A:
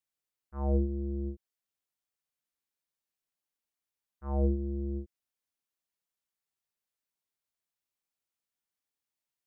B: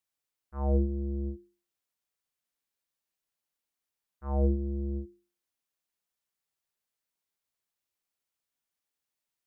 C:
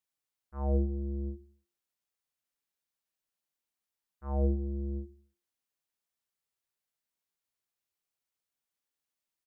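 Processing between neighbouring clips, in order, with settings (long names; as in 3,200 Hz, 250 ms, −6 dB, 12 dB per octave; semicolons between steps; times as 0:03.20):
mains-hum notches 50/100/150/200/250/300/350 Hz; level +2 dB
repeating echo 71 ms, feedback 60%, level −22.5 dB; level −2.5 dB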